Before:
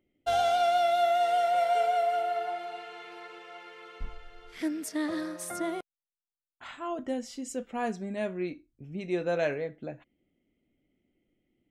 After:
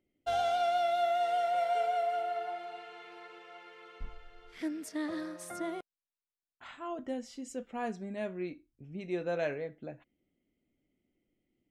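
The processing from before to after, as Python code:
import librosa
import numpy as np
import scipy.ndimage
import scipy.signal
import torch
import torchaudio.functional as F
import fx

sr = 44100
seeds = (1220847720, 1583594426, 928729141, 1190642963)

y = fx.high_shelf(x, sr, hz=7600.0, db=-6.0)
y = y * librosa.db_to_amplitude(-4.5)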